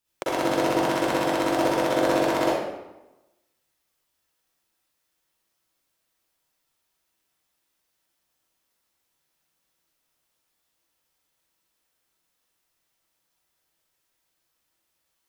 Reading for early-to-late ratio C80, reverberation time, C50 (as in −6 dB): 0.5 dB, 1.0 s, −5.5 dB